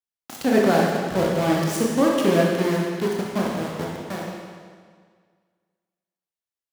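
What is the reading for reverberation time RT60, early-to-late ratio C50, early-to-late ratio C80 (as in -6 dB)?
1.8 s, -0.5 dB, 2.0 dB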